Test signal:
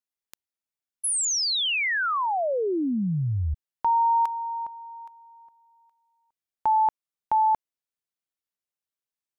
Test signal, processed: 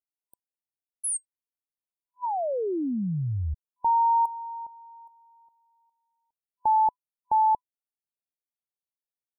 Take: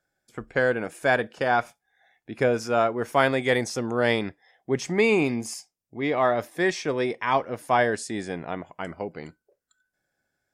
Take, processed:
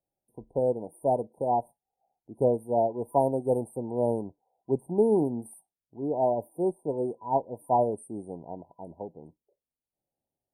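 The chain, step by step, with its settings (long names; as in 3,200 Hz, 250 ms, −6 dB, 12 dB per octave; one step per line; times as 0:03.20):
brick-wall band-stop 1,000–8,400 Hz
expander for the loud parts 1.5 to 1, over −34 dBFS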